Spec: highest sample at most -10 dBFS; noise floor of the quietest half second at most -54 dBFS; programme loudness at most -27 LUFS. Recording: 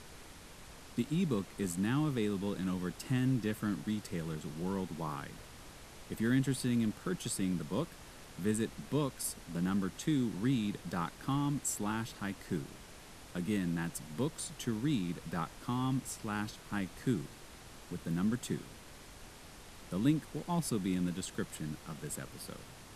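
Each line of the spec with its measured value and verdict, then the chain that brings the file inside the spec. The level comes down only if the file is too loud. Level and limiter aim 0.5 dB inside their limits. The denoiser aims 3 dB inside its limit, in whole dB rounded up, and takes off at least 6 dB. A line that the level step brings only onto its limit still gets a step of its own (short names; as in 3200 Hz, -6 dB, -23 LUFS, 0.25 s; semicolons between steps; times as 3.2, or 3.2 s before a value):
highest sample -18.5 dBFS: OK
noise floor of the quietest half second -52 dBFS: fail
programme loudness -36.0 LUFS: OK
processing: denoiser 6 dB, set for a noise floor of -52 dBFS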